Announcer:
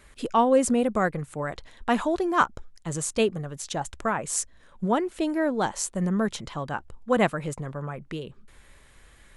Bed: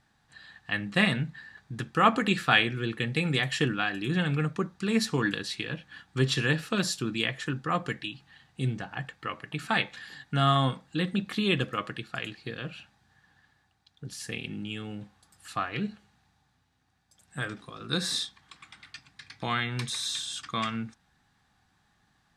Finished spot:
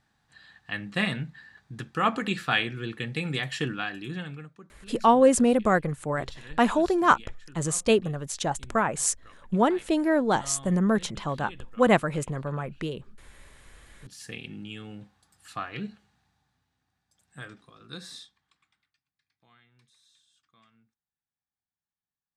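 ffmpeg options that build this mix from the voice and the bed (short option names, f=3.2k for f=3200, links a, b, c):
-filter_complex "[0:a]adelay=4700,volume=2dB[a];[1:a]volume=13.5dB,afade=t=out:st=3.84:d=0.67:silence=0.141254,afade=t=in:st=13.78:d=0.5:silence=0.149624,afade=t=out:st=16.18:d=2.76:silence=0.0354813[b];[a][b]amix=inputs=2:normalize=0"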